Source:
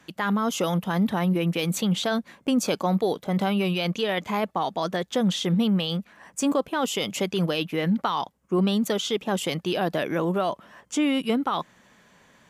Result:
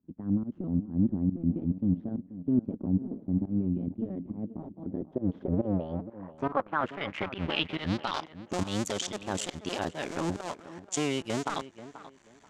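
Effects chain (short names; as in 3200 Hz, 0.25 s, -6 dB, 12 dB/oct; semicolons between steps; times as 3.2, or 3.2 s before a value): cycle switcher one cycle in 2, muted; low-pass sweep 250 Hz -> 7300 Hz, 4.76–8.58; notch 480 Hz, Q 12; pump 139 bpm, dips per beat 1, -19 dB, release 0.151 s; tape echo 0.485 s, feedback 27%, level -13 dB, low-pass 1900 Hz; gain -4 dB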